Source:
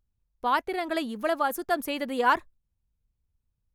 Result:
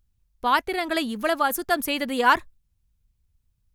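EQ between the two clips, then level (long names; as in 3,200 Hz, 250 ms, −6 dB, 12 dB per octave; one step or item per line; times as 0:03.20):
parametric band 550 Hz −6.5 dB 2.8 octaves
+8.5 dB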